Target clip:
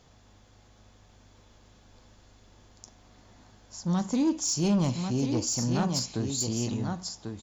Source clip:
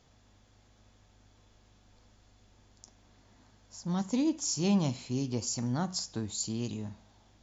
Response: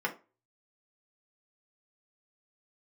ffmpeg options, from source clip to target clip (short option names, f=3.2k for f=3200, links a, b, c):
-filter_complex "[0:a]aecho=1:1:1093:0.447,asoftclip=type=tanh:threshold=-24dB,asplit=2[a][b];[1:a]atrim=start_sample=2205,lowpass=2.1k[c];[b][c]afir=irnorm=-1:irlink=0,volume=-20dB[d];[a][d]amix=inputs=2:normalize=0,volume=5dB"